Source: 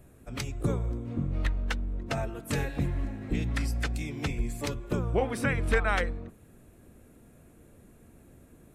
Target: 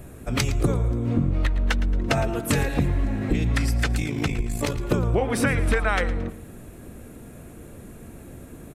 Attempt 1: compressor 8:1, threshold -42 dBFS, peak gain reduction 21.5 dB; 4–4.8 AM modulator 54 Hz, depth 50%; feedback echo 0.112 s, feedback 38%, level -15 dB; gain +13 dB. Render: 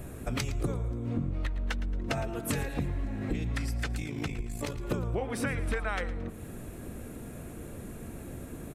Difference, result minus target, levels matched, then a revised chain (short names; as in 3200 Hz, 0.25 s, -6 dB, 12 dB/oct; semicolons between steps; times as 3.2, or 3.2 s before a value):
compressor: peak gain reduction +9.5 dB
compressor 8:1, threshold -31 dBFS, peak gain reduction 12 dB; 4–4.8 AM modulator 54 Hz, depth 50%; feedback echo 0.112 s, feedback 38%, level -15 dB; gain +13 dB